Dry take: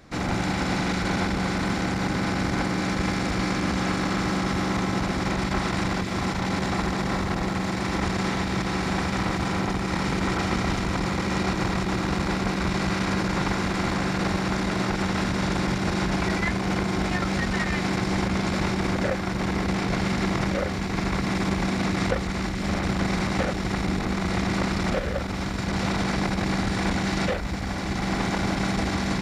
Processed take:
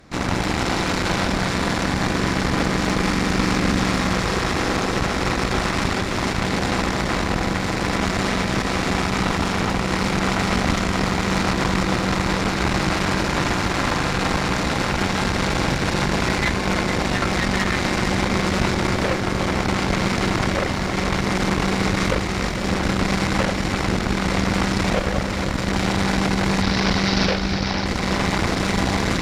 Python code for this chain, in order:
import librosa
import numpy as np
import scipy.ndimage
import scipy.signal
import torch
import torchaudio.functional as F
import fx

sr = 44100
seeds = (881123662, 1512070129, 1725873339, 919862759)

y = fx.cheby_harmonics(x, sr, harmonics=(6,), levels_db=(-12,), full_scale_db=-11.0)
y = fx.high_shelf_res(y, sr, hz=6600.0, db=-9.0, q=3.0, at=(26.62, 27.86))
y = fx.echo_split(y, sr, split_hz=560.0, low_ms=300, high_ms=454, feedback_pct=52, wet_db=-8)
y = y * 10.0 ** (2.0 / 20.0)